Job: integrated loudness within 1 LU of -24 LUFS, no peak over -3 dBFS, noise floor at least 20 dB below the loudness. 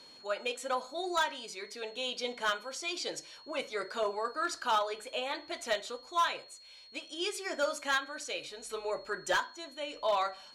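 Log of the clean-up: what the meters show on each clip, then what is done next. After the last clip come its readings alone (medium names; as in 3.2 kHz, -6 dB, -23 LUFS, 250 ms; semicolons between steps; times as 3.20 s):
clipped samples 0.6%; clipping level -23.0 dBFS; steady tone 4.3 kHz; tone level -53 dBFS; loudness -34.5 LUFS; peak level -23.0 dBFS; loudness target -24.0 LUFS
-> clip repair -23 dBFS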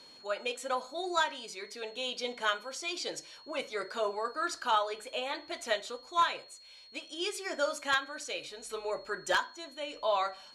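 clipped samples 0.0%; steady tone 4.3 kHz; tone level -53 dBFS
-> band-stop 4.3 kHz, Q 30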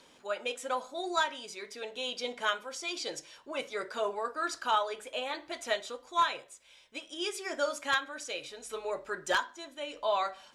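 steady tone not found; loudness -34.0 LUFS; peak level -14.0 dBFS; loudness target -24.0 LUFS
-> trim +10 dB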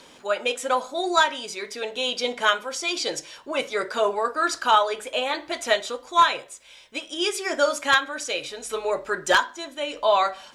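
loudness -24.0 LUFS; peak level -4.0 dBFS; noise floor -50 dBFS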